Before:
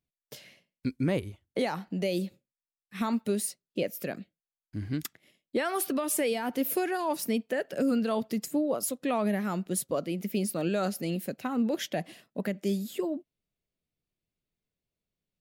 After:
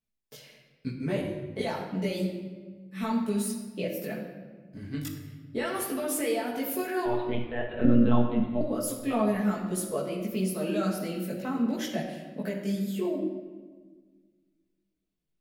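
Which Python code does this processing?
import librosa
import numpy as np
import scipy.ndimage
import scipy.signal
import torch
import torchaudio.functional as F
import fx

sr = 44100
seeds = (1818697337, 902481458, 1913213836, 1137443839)

y = fx.chorus_voices(x, sr, voices=4, hz=0.45, base_ms=18, depth_ms=4.2, mix_pct=55)
y = fx.lpc_monotone(y, sr, seeds[0], pitch_hz=120.0, order=16, at=(7.05, 8.61))
y = fx.room_shoebox(y, sr, seeds[1], volume_m3=1400.0, walls='mixed', distance_m=1.5)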